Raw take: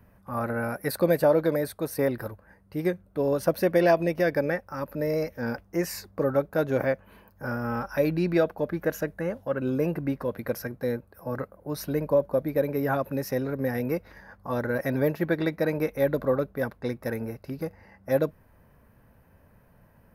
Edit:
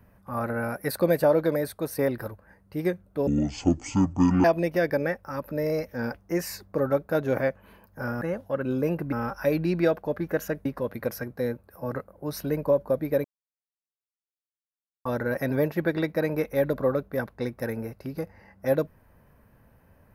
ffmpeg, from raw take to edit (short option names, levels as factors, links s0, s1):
-filter_complex "[0:a]asplit=8[s0][s1][s2][s3][s4][s5][s6][s7];[s0]atrim=end=3.274[s8];[s1]atrim=start=3.27:end=3.88,asetpts=PTS-STARTPTS,asetrate=22932,aresample=44100[s9];[s2]atrim=start=3.876:end=7.652[s10];[s3]atrim=start=9.178:end=10.092[s11];[s4]atrim=start=7.648:end=9.182[s12];[s5]atrim=start=10.088:end=12.68,asetpts=PTS-STARTPTS,afade=t=out:st=2.588:d=0.004:c=hsin[s13];[s6]atrim=start=12.68:end=14.49,asetpts=PTS-STARTPTS,volume=0[s14];[s7]atrim=start=14.49,asetpts=PTS-STARTPTS,afade=t=in:d=0.004:c=hsin[s15];[s8][s9]acrossfade=d=0.004:c1=hsin:c2=hsin[s16];[s16][s10]acrossfade=d=0.004:c1=hsin:c2=hsin[s17];[s17][s11]acrossfade=d=0.004:c1=hsin:c2=hsin[s18];[s18][s12]acrossfade=d=0.004:c1=hsin:c2=hsin[s19];[s13][s14][s15]concat=n=3:v=0:a=1[s20];[s19][s20]acrossfade=d=0.004:c1=hsin:c2=hsin"